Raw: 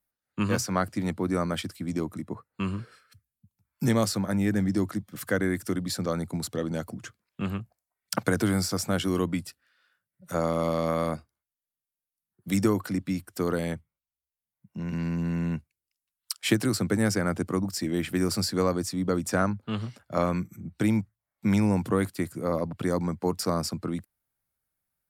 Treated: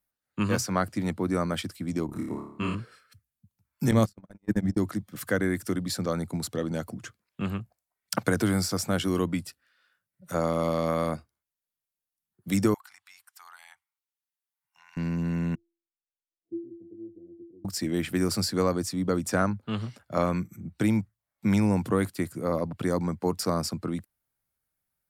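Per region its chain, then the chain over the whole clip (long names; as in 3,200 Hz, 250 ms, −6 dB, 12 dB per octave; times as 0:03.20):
0:02.06–0:02.75: flutter between parallel walls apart 4.8 metres, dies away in 0.68 s + one half of a high-frequency compander decoder only
0:03.91–0:04.78: mains-hum notches 50/100/150/200/250/300/350 Hz + noise gate −26 dBFS, range −53 dB + low-shelf EQ 150 Hz +10 dB
0:12.74–0:14.97: elliptic high-pass filter 810 Hz + downward compressor 2 to 1, threshold −56 dBFS
0:15.55–0:17.65: Chebyshev low-pass filter 500 Hz, order 5 + tuned comb filter 340 Hz, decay 0.44 s, mix 100%
whole clip: no processing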